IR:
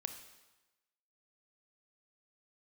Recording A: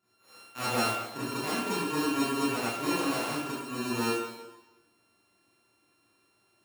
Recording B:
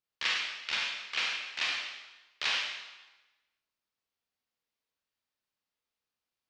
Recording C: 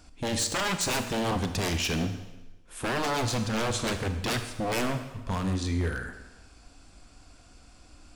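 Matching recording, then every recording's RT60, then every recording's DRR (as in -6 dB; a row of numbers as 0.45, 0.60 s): C; 1.1, 1.1, 1.1 s; -11.5, -2.5, 7.0 dB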